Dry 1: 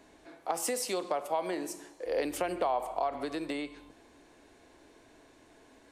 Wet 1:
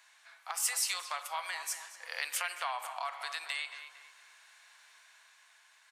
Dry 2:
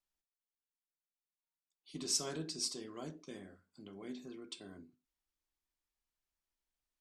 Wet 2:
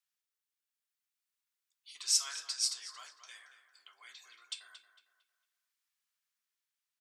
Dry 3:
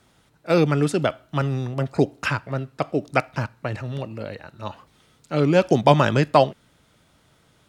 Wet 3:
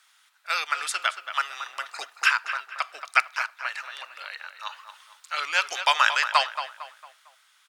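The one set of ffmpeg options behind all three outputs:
ffmpeg -i in.wav -filter_complex "[0:a]highpass=frequency=1200:width=0.5412,highpass=frequency=1200:width=1.3066,dynaudnorm=framelen=160:gausssize=11:maxgain=3dB,asplit=2[link_01][link_02];[link_02]adelay=227,lowpass=frequency=3000:poles=1,volume=-9.5dB,asplit=2[link_03][link_04];[link_04]adelay=227,lowpass=frequency=3000:poles=1,volume=0.41,asplit=2[link_05][link_06];[link_06]adelay=227,lowpass=frequency=3000:poles=1,volume=0.41,asplit=2[link_07][link_08];[link_08]adelay=227,lowpass=frequency=3000:poles=1,volume=0.41[link_09];[link_01][link_03][link_05][link_07][link_09]amix=inputs=5:normalize=0,volume=3dB" out.wav

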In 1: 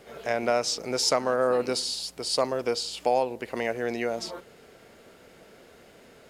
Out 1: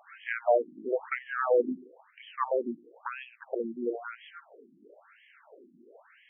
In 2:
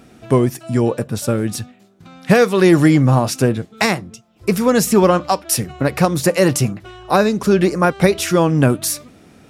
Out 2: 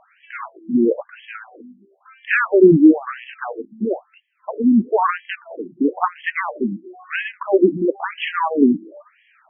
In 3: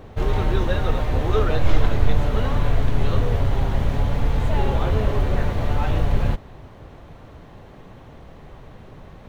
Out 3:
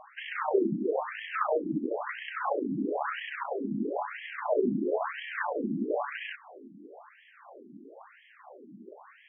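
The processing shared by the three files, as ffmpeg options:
ffmpeg -i in.wav -af "aeval=exprs='0.891*(cos(1*acos(clip(val(0)/0.891,-1,1)))-cos(1*PI/2))+0.0562*(cos(4*acos(clip(val(0)/0.891,-1,1)))-cos(4*PI/2))+0.0251*(cos(7*acos(clip(val(0)/0.891,-1,1)))-cos(7*PI/2))+0.02*(cos(8*acos(clip(val(0)/0.891,-1,1)))-cos(8*PI/2))':channel_layout=same,afftfilt=real='re*between(b*sr/1024,240*pow(2400/240,0.5+0.5*sin(2*PI*1*pts/sr))/1.41,240*pow(2400/240,0.5+0.5*sin(2*PI*1*pts/sr))*1.41)':imag='im*between(b*sr/1024,240*pow(2400/240,0.5+0.5*sin(2*PI*1*pts/sr))/1.41,240*pow(2400/240,0.5+0.5*sin(2*PI*1*pts/sr))*1.41)':win_size=1024:overlap=0.75,volume=4.5dB" out.wav

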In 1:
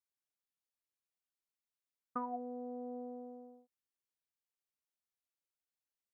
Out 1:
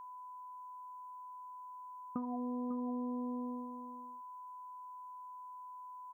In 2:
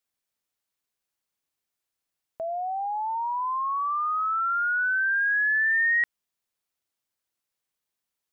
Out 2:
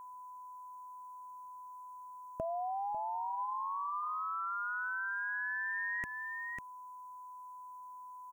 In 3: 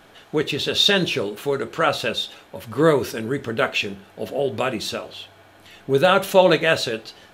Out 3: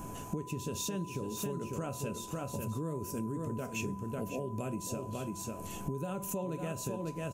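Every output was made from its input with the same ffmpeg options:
ffmpeg -i in.wav -af "firequalizer=gain_entry='entry(160,0);entry(470,-12);entry(1900,-27);entry(3700,-29);entry(6500,-3)':delay=0.05:min_phase=1,aecho=1:1:547:0.335,alimiter=level_in=1dB:limit=-24dB:level=0:latency=1:release=290,volume=-1dB,acompressor=threshold=-51dB:ratio=5,equalizer=frequency=2600:width=3.7:gain=11,aeval=exprs='val(0)+0.000891*sin(2*PI*1000*n/s)':channel_layout=same,volume=14.5dB" out.wav

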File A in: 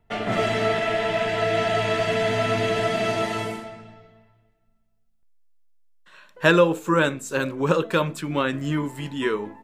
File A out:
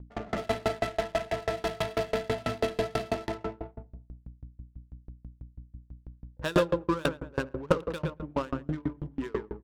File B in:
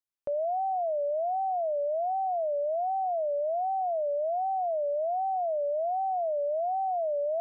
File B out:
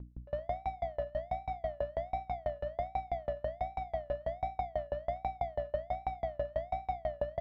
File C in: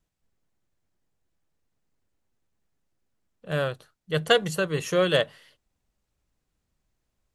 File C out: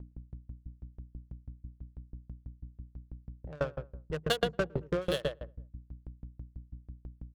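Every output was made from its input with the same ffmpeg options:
ffmpeg -i in.wav -filter_complex "[0:a]afwtdn=0.0178,highshelf=frequency=3500:width_type=q:width=1.5:gain=10,adynamicsmooth=sensitivity=3:basefreq=590,aeval=exprs='val(0)+0.0112*(sin(2*PI*60*n/s)+sin(2*PI*2*60*n/s)/2+sin(2*PI*3*60*n/s)/3+sin(2*PI*4*60*n/s)/4+sin(2*PI*5*60*n/s)/5)':channel_layout=same,asplit=2[link_01][link_02];[link_02]adelay=115,lowpass=frequency=1400:poles=1,volume=-6dB,asplit=2[link_03][link_04];[link_04]adelay=115,lowpass=frequency=1400:poles=1,volume=0.32,asplit=2[link_05][link_06];[link_06]adelay=115,lowpass=frequency=1400:poles=1,volume=0.32,asplit=2[link_07][link_08];[link_08]adelay=115,lowpass=frequency=1400:poles=1,volume=0.32[link_09];[link_01][link_03][link_05][link_07][link_09]amix=inputs=5:normalize=0,aeval=exprs='val(0)*pow(10,-31*if(lt(mod(6.1*n/s,1),2*abs(6.1)/1000),1-mod(6.1*n/s,1)/(2*abs(6.1)/1000),(mod(6.1*n/s,1)-2*abs(6.1)/1000)/(1-2*abs(6.1)/1000))/20)':channel_layout=same" out.wav

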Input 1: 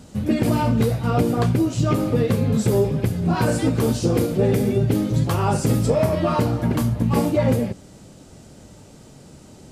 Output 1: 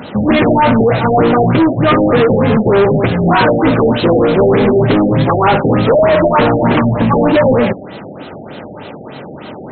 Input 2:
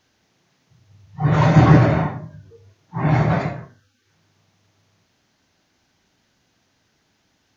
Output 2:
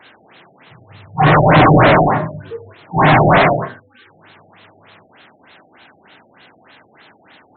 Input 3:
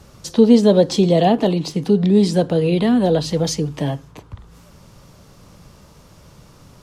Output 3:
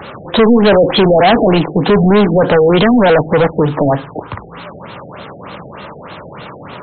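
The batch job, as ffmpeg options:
ffmpeg -i in.wav -filter_complex "[0:a]highpass=60,asplit=2[link_01][link_02];[link_02]highpass=frequency=720:poles=1,volume=32dB,asoftclip=type=tanh:threshold=-0.5dB[link_03];[link_01][link_03]amix=inputs=2:normalize=0,lowpass=frequency=7000:poles=1,volume=-6dB,afftfilt=real='re*lt(b*sr/1024,780*pow(4300/780,0.5+0.5*sin(2*PI*3.3*pts/sr)))':imag='im*lt(b*sr/1024,780*pow(4300/780,0.5+0.5*sin(2*PI*3.3*pts/sr)))':win_size=1024:overlap=0.75,volume=-1dB" out.wav

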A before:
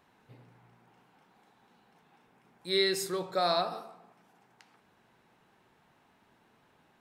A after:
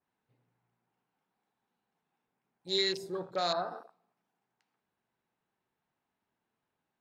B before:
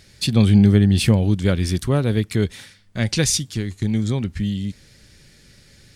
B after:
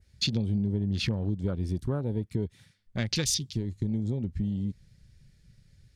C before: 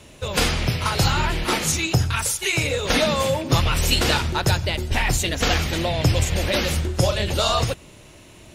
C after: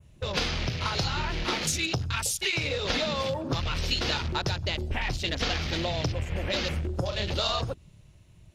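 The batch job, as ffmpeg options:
ffmpeg -i in.wav -af "acompressor=threshold=-23dB:ratio=5,afwtdn=0.0158,adynamicequalizer=threshold=0.00708:dfrequency=4400:dqfactor=1:tfrequency=4400:tqfactor=1:attack=5:release=100:ratio=0.375:range=2.5:mode=boostabove:tftype=bell,volume=-3dB" out.wav

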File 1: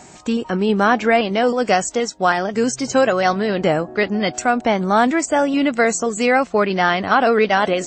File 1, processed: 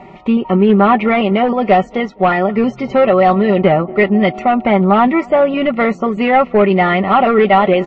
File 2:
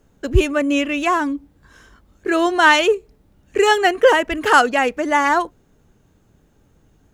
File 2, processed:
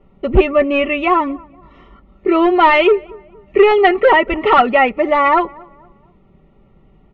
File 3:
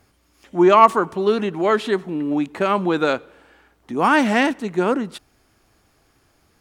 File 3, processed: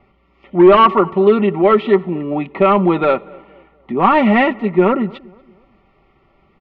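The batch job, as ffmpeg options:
ffmpeg -i in.wav -filter_complex "[0:a]asplit=2[link_01][link_02];[link_02]asoftclip=type=tanh:threshold=-12.5dB,volume=-9.5dB[link_03];[link_01][link_03]amix=inputs=2:normalize=0,asuperstop=centerf=1600:order=20:qfactor=5,volume=9.5dB,asoftclip=hard,volume=-9.5dB,lowpass=frequency=2700:width=0.5412,lowpass=frequency=2700:width=1.3066,aecho=1:1:5.2:0.54,asplit=2[link_04][link_05];[link_05]adelay=235,lowpass=frequency=1600:poles=1,volume=-24dB,asplit=2[link_06][link_07];[link_07]adelay=235,lowpass=frequency=1600:poles=1,volume=0.42,asplit=2[link_08][link_09];[link_09]adelay=235,lowpass=frequency=1600:poles=1,volume=0.42[link_10];[link_06][link_08][link_10]amix=inputs=3:normalize=0[link_11];[link_04][link_11]amix=inputs=2:normalize=0,volume=3dB" out.wav

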